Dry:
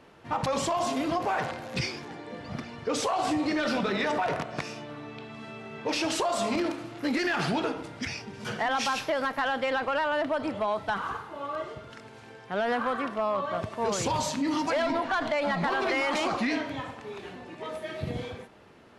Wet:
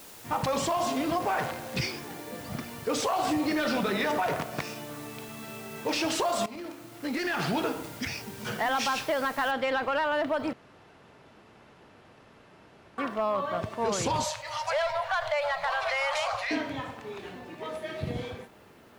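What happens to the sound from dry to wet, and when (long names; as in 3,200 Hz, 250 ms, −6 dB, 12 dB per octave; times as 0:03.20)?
0:06.46–0:07.62: fade in, from −16 dB
0:09.51: noise floor change −49 dB −70 dB
0:10.53–0:12.98: fill with room tone
0:14.24–0:16.51: elliptic band-stop filter 120–560 Hz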